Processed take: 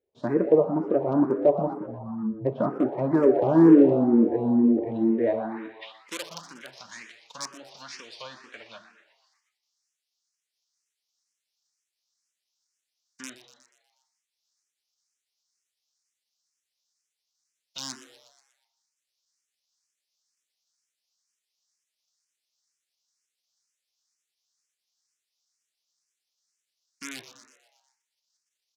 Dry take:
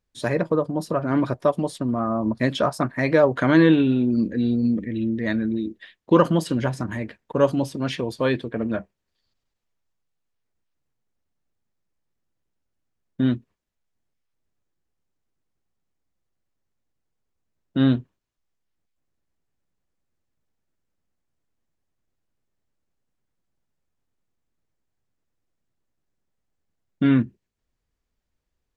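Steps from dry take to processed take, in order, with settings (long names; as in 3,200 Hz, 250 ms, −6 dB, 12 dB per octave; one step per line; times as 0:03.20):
spectral envelope flattened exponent 0.6
treble cut that deepens with the level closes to 1,300 Hz, closed at −18.5 dBFS
time-frequency box erased 0:01.73–0:02.46, 230–7,800 Hz
reverb whose tail is shaped and stops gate 360 ms falling, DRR 10 dB
in parallel at −11 dB: wrap-around overflow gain 10 dB
on the sum: band-pass filter sweep 380 Hz → 5,600 Hz, 0:05.17–0:06.18
on a send: echo with shifted repeats 121 ms, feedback 58%, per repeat +110 Hz, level −14 dB
on the sum: frequency shifter mixed with the dry sound +2.1 Hz
level +7.5 dB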